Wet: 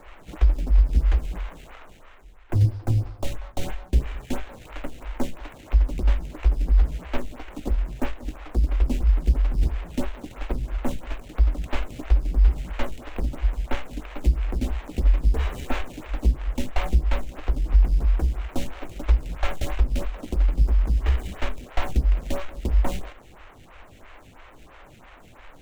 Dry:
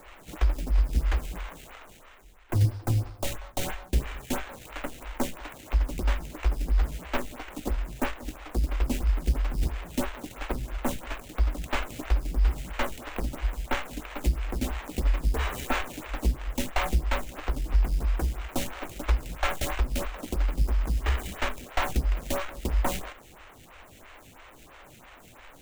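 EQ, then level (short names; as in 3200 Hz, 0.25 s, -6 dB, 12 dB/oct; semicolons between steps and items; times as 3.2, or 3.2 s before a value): LPF 3100 Hz 6 dB/oct; dynamic EQ 1300 Hz, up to -6 dB, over -45 dBFS, Q 0.71; low shelf 60 Hz +6.5 dB; +2.0 dB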